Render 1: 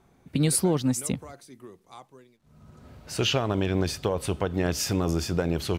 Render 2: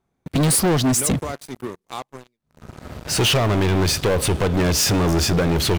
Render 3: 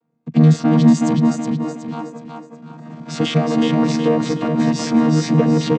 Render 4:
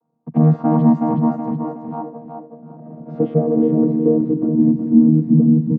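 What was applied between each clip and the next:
sample leveller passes 5; gain -3 dB
chord vocoder bare fifth, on D#3; feedback echo 0.37 s, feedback 39%, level -4 dB; gain +5 dB
low-pass sweep 900 Hz -> 220 Hz, 1.72–5.65; gain -2.5 dB

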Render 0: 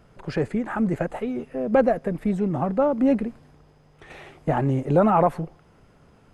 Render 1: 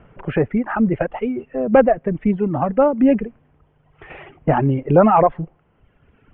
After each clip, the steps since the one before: reverb removal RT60 1.4 s; steep low-pass 3100 Hz 72 dB/oct; gain +6.5 dB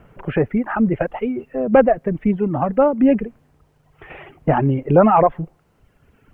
bit-crush 12-bit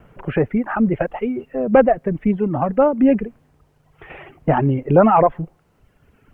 wow and flutter 28 cents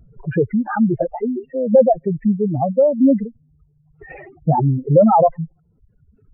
spectral contrast raised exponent 3.1; gain +1.5 dB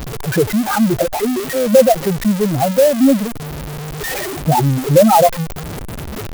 zero-crossing step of -21 dBFS; tone controls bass -2 dB, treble +9 dB; clock jitter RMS 0.044 ms; gain +1.5 dB

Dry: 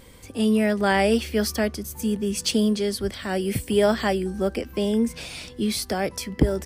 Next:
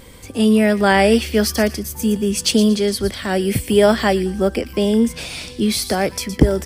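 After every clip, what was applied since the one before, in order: thin delay 0.116 s, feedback 30%, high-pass 3000 Hz, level -10 dB; gain +6.5 dB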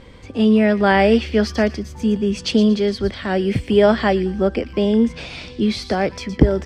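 air absorption 160 m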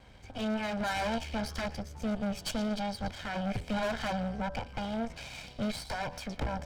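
minimum comb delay 1.3 ms; tube stage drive 22 dB, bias 0.65; de-hum 82.45 Hz, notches 16; gain -6.5 dB

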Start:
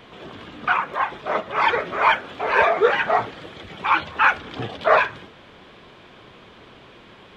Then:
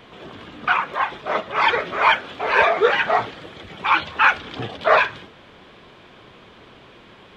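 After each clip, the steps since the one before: dynamic EQ 3900 Hz, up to +5 dB, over -37 dBFS, Q 0.73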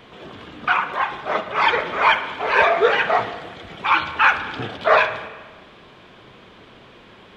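spring tank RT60 1.3 s, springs 38/54 ms, chirp 45 ms, DRR 10 dB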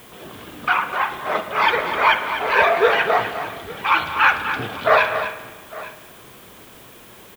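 added noise blue -49 dBFS; tapped delay 0.251/0.856 s -10/-19 dB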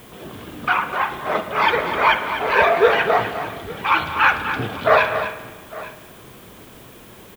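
low shelf 440 Hz +6.5 dB; gain -1 dB

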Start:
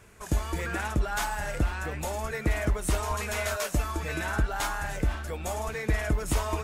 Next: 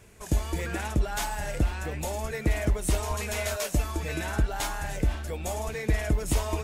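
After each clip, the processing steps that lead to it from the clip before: bell 1300 Hz -7 dB 1 oct; gain +1.5 dB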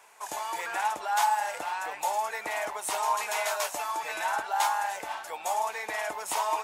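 resonant high-pass 880 Hz, resonance Q 3.8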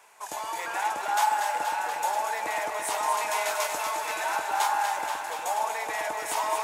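echo with dull and thin repeats by turns 0.119 s, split 850 Hz, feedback 86%, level -5 dB

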